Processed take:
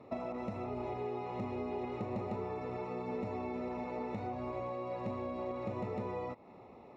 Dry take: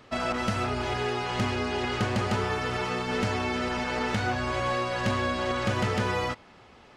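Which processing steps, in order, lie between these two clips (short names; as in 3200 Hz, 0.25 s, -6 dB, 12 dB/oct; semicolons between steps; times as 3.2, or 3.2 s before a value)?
HPF 260 Hz 6 dB/oct; compressor 6:1, threshold -37 dBFS, peak gain reduction 11.5 dB; running mean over 28 samples; gain +4.5 dB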